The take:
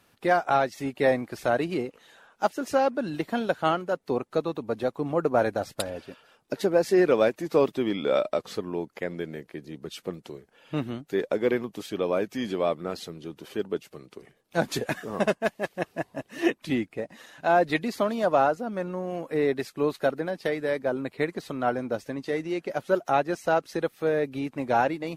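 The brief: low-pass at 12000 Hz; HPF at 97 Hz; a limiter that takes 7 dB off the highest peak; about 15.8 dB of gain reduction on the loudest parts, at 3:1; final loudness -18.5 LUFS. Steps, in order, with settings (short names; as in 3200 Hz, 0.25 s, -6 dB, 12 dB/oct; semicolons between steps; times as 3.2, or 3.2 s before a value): HPF 97 Hz; LPF 12000 Hz; compressor 3:1, threshold -39 dBFS; gain +23 dB; limiter -5.5 dBFS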